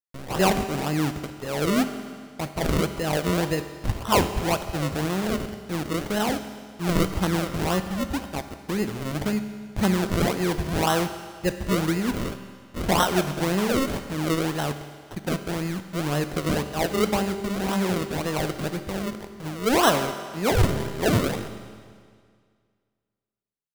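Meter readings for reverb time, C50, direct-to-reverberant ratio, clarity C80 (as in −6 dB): 2.0 s, 9.5 dB, 8.5 dB, 10.5 dB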